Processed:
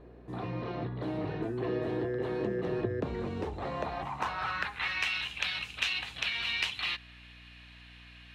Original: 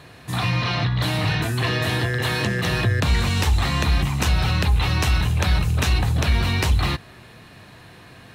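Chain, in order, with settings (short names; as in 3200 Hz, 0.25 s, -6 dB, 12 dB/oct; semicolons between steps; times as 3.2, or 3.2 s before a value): band-pass sweep 390 Hz -> 2800 Hz, 3.41–5.19; hum 60 Hz, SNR 20 dB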